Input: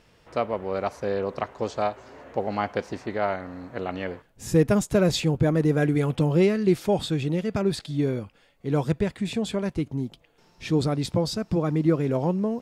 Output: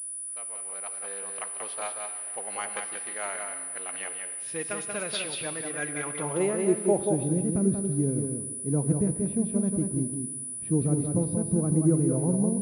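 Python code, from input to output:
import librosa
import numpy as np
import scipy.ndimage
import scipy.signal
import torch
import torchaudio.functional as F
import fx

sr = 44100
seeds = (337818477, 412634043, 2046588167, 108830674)

p1 = fx.fade_in_head(x, sr, length_s=1.7)
p2 = fx.filter_sweep_bandpass(p1, sr, from_hz=2800.0, to_hz=200.0, start_s=5.69, end_s=7.43, q=0.93)
p3 = p2 + fx.echo_single(p2, sr, ms=184, db=-5.0, dry=0)
p4 = fx.rev_gated(p3, sr, seeds[0], gate_ms=360, shape='flat', drr_db=10.0)
y = fx.pwm(p4, sr, carrier_hz=9800.0)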